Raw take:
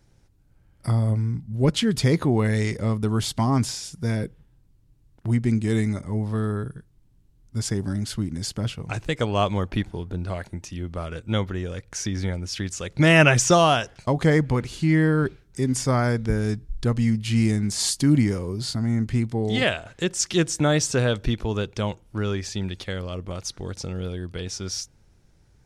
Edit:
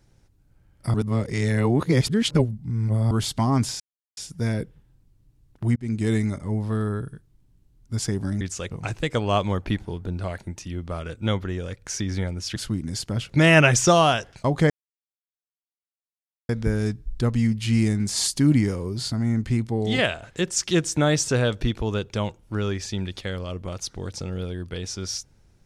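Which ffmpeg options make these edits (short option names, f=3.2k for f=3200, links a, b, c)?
-filter_complex "[0:a]asplit=11[a][b][c][d][e][f][g][h][i][j][k];[a]atrim=end=0.942[l];[b]atrim=start=0.938:end=3.112,asetpts=PTS-STARTPTS,areverse[m];[c]atrim=start=3.108:end=3.8,asetpts=PTS-STARTPTS,afade=t=out:st=0.688:d=0.004:c=hsin,apad=pad_dur=0.37[n];[d]atrim=start=3.8:end=5.39,asetpts=PTS-STARTPTS,afade=t=in:d=0.004:c=hsin,afade=t=out:st=1.586:d=0.004:c=hsin[o];[e]atrim=start=5.39:end=8.042,asetpts=PTS-STARTPTS,afade=t=in:d=0.26[p];[f]atrim=start=12.618:end=12.922[q];[g]atrim=start=8.768:end=12.622[r];[h]atrim=start=8.038:end=8.772[s];[i]atrim=start=12.918:end=14.33,asetpts=PTS-STARTPTS,afade=t=out:st=1.408:d=0.004:c=hsin[t];[j]atrim=start=14.33:end=16.12,asetpts=PTS-STARTPTS,volume=0[u];[k]atrim=start=16.12,asetpts=PTS-STARTPTS,afade=t=in:d=0.004:c=hsin[v];[l][m]acrossfade=d=0.004:c1=hsin:c2=hsin[w];[n][o][p]concat=n=3:v=0:a=1[x];[w][x]acrossfade=d=0.004:c1=hsin:c2=hsin[y];[y][q]acrossfade=d=0.004:c1=hsin:c2=hsin[z];[z][r]acrossfade=d=0.004:c1=hsin:c2=hsin[aa];[aa][s]acrossfade=d=0.004:c1=hsin:c2=hsin[ab];[t][u][v]concat=n=3:v=0:a=1[ac];[ab][ac]acrossfade=d=0.004:c1=hsin:c2=hsin"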